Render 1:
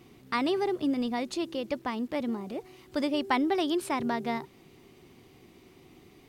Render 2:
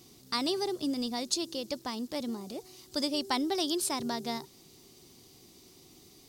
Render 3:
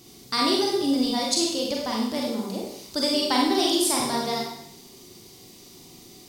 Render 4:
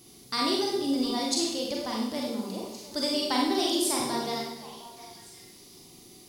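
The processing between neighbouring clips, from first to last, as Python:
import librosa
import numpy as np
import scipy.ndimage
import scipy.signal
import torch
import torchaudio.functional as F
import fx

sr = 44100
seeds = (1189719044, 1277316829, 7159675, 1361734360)

y1 = fx.high_shelf_res(x, sr, hz=3400.0, db=13.0, q=1.5)
y1 = y1 * 10.0 ** (-4.0 / 20.0)
y2 = fx.rev_schroeder(y1, sr, rt60_s=0.75, comb_ms=32, drr_db=-2.5)
y2 = y2 * 10.0 ** (4.5 / 20.0)
y3 = fx.echo_stepped(y2, sr, ms=354, hz=320.0, octaves=1.4, feedback_pct=70, wet_db=-10.0)
y3 = y3 + 10.0 ** (-53.0 / 20.0) * np.sin(2.0 * np.pi * 11000.0 * np.arange(len(y3)) / sr)
y3 = y3 * 10.0 ** (-4.5 / 20.0)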